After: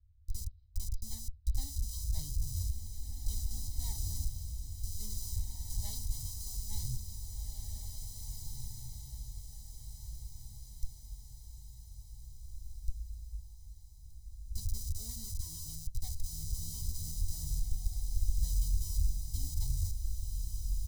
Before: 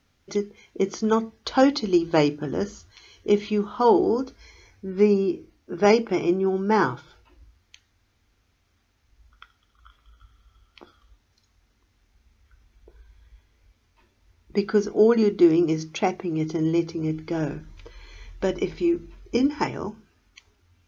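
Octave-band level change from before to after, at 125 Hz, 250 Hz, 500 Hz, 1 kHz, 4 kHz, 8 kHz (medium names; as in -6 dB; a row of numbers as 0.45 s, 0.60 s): -4.0 dB, -33.0 dB, under -40 dB, -36.0 dB, -10.0 dB, no reading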